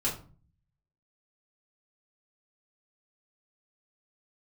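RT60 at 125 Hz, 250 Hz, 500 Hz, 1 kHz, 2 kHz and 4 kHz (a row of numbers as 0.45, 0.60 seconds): 0.95, 0.65, 0.40, 0.40, 0.30, 0.25 seconds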